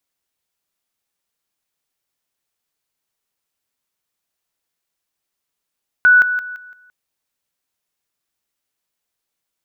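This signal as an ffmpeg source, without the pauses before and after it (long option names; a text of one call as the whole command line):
ffmpeg -f lavfi -i "aevalsrc='pow(10,(-6.5-10*floor(t/0.17))/20)*sin(2*PI*1480*t)':duration=0.85:sample_rate=44100" out.wav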